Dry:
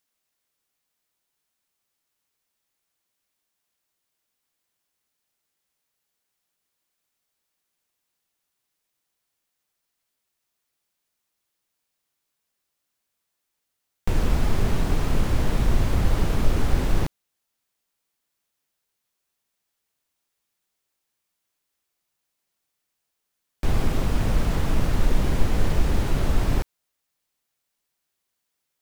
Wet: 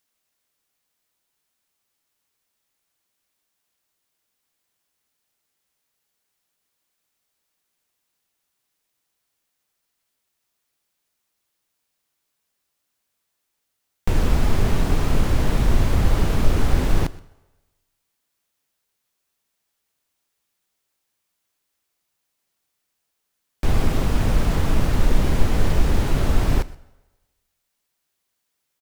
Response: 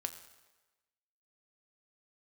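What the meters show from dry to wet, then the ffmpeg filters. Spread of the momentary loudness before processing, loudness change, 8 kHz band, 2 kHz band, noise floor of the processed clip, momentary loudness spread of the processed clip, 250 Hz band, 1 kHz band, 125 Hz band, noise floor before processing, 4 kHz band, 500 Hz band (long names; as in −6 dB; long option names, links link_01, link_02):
5 LU, +3.0 dB, +3.0 dB, +3.0 dB, −77 dBFS, 5 LU, +3.0 dB, +3.0 dB, +3.0 dB, −80 dBFS, +3.0 dB, +3.0 dB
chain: -filter_complex "[0:a]aecho=1:1:124:0.0891,asplit=2[link_01][link_02];[1:a]atrim=start_sample=2205[link_03];[link_02][link_03]afir=irnorm=-1:irlink=0,volume=-6.5dB[link_04];[link_01][link_04]amix=inputs=2:normalize=0"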